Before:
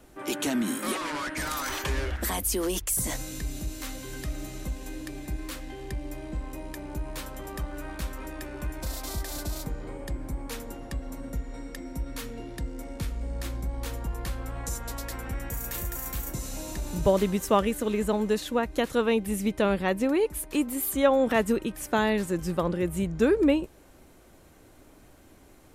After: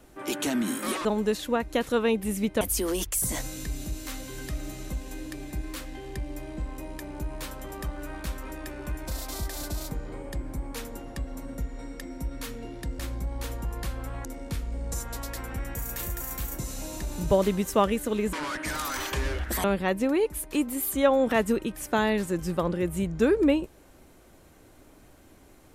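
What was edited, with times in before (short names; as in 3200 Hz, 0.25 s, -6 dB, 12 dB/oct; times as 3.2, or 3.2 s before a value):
1.05–2.36 swap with 18.08–19.64
12.74–13.41 move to 14.67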